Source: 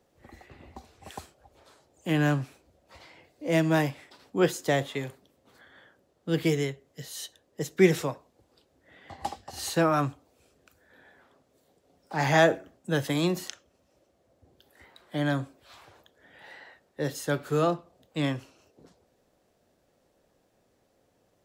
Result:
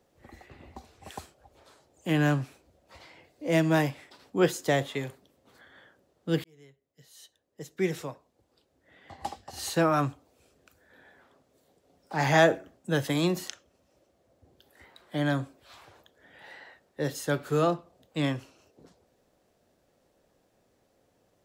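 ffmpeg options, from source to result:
-filter_complex "[0:a]asplit=2[a][b];[a]atrim=end=6.44,asetpts=PTS-STARTPTS,afade=t=out:st=6.436:d=0.004:c=hsin[c];[b]atrim=start=6.44,asetpts=PTS-STARTPTS,afade=t=in:d=3.6[d];[c][d]concat=n=2:v=0:a=1"

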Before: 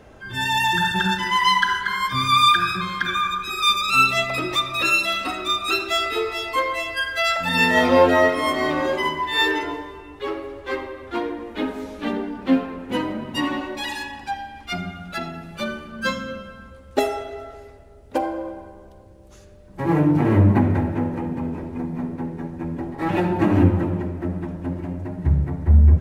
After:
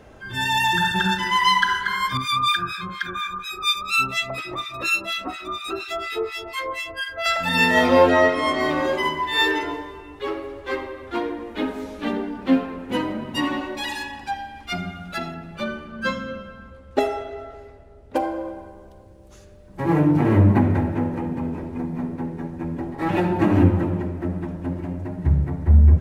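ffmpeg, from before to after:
-filter_complex "[0:a]asettb=1/sr,asplit=3[a][b][c];[a]atrim=end=2.174[d];[b]atrim=start=2.17:end=7.26,asetpts=PTS-STARTPTS,afade=t=in:d=0.004:c=qsin,afade=t=out:st=5.086:d=0.004:c=qsin,acrossover=split=1300[e][f];[e]aeval=exprs='val(0)*(1-1/2+1/2*cos(2*PI*4.2*n/s))':c=same[g];[f]aeval=exprs='val(0)*(1-1/2-1/2*cos(2*PI*4.2*n/s))':c=same[h];[g][h]amix=inputs=2:normalize=0[i];[c]atrim=start=7.256[j];[d][i]acrossfade=d=0.004:c1=hsin:c2=qsin[k];[k][j]acrossfade=d=0.004:c1=qsin:c2=hsin,asettb=1/sr,asplit=3[l][m][n];[l]atrim=end=8.094[o];[m]atrim=start=8.09:end=8.6,asetpts=PTS-STARTPTS,afade=t=in:d=0.004:c=qsin,afade=t=out:st=0.506:d=0.004:c=qsin,lowpass=7.7k[p];[n]atrim=start=8.596[q];[o][p]acrossfade=d=0.004:c1=hsin:c2=qsin[r];[r][q]acrossfade=d=0.004:c1=qsin:c2=hsin,asettb=1/sr,asplit=3[s][t][u];[s]atrim=end=15.344[v];[t]atrim=start=15.34:end=18.16,asetpts=PTS-STARTPTS,afade=t=in:d=0.004:c=qsin,afade=t=out:st=2.816:d=0.004:c=qsin,highshelf=f=5.3k:g=-11.5[w];[u]atrim=start=18.156[x];[v][w]acrossfade=d=0.004:c1=hsin:c2=qsin[y];[y][x]acrossfade=d=0.004:c1=qsin:c2=hsin"

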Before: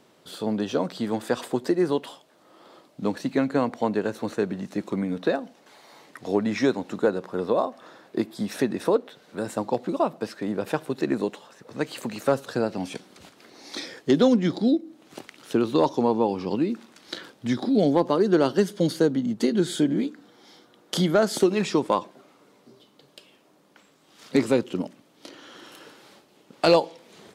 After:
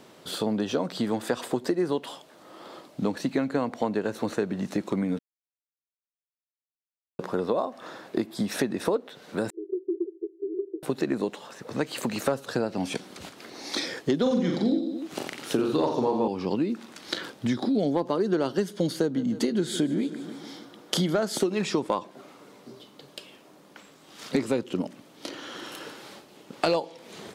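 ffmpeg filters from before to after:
-filter_complex "[0:a]asettb=1/sr,asplit=3[a][b][c];[a]atrim=end=9.504[d];[b]atrim=start=9.5:end=10.83,asetpts=PTS-STARTPTS,afade=t=in:d=0.004:c=qsin,afade=t=out:st=1.326:d=0.004:c=qsin,asuperpass=centerf=370:order=8:qfactor=4.4[e];[c]atrim=start=10.826[f];[d][e]acrossfade=d=0.004:c1=hsin:c2=qsin[g];[g][f]acrossfade=d=0.004:c1=qsin:c2=hsin,asettb=1/sr,asplit=3[h][i][j];[h]atrim=end=14.224[k];[i]atrim=start=14.22:end=16.28,asetpts=PTS-STARTPTS,afade=t=in:d=0.004:c=qsin,afade=t=out:st=2.056:d=0.004:c=qsin,aecho=1:1:40|88|145.6|214.7|297.7:0.631|0.398|0.251|0.158|0.1,atrim=end_sample=90846[l];[j]atrim=start=16.276[m];[k][l]acrossfade=d=0.004:c1=hsin:c2=qsin[n];[n][m]acrossfade=d=0.004:c1=qsin:c2=hsin,asettb=1/sr,asplit=3[o][p][q];[o]atrim=end=19.014[r];[p]atrim=start=19.01:end=21.21,asetpts=PTS-STARTPTS,afade=t=in:d=0.004:c=qsin,afade=t=out:st=2.196:d=0.004:c=qsin,aecho=1:1:155|310|465|620|775:0.126|0.0718|0.0409|0.0233|0.0133,atrim=end_sample=97020[s];[q]atrim=start=21.206[t];[r][s]acrossfade=d=0.004:c1=hsin:c2=qsin[u];[u][t]acrossfade=d=0.004:c1=qsin:c2=hsin,asplit=3[v][w][x];[v]atrim=end=5.19,asetpts=PTS-STARTPTS,afade=t=out:st=5.186:d=0.004:c=hsin[y];[w]atrim=start=5.19:end=7.19,asetpts=PTS-STARTPTS,volume=0[z];[x]atrim=start=7.19,asetpts=PTS-STARTPTS,afade=t=in:d=0.004:c=hsin[aa];[y][z][aa]concat=n=3:v=0:a=1,acompressor=threshold=-32dB:ratio=3,volume=6.5dB"

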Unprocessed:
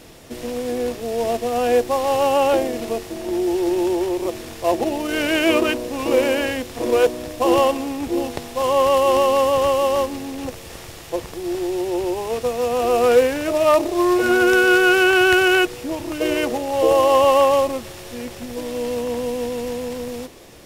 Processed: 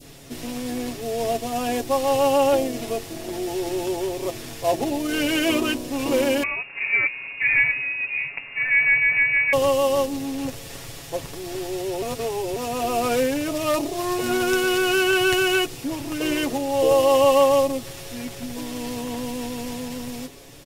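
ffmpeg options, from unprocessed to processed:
-filter_complex "[0:a]asettb=1/sr,asplit=3[a][b][c];[a]atrim=end=6.434[d];[b]atrim=start=6.43:end=9.53,asetpts=PTS-STARTPTS,afade=t=in:d=0.004:c=qsin,afade=t=out:st=3.096:d=0.004:c=qsin,lowpass=f=2.4k:t=q:w=0.5098,lowpass=f=2.4k:t=q:w=0.6013,lowpass=f=2.4k:t=q:w=0.9,lowpass=f=2.4k:t=q:w=2.563,afreqshift=-2800[e];[c]atrim=start=9.526[f];[d][e]acrossfade=d=0.004:c1=hsin:c2=qsin[g];[g][f]acrossfade=d=0.004:c1=qsin:c2=hsin,asplit=3[h][i][j];[h]atrim=end=12.022[k];[i]atrim=start=12.018:end=12.562,asetpts=PTS-STARTPTS,areverse[l];[j]atrim=start=12.558[m];[k][l]acrossfade=d=0.004:c1=hsin:c2=hsin[n];[n][m]acrossfade=d=0.004:c1=hsin:c2=hsin,equalizer=f=840:t=o:w=2.9:g=-5,aecho=1:1:7.2:0.67,adynamicequalizer=threshold=0.0224:dfrequency=1600:dqfactor=0.75:tfrequency=1600:tqfactor=0.75:attack=5:release=100:ratio=0.375:range=2:mode=cutabove:tftype=bell"

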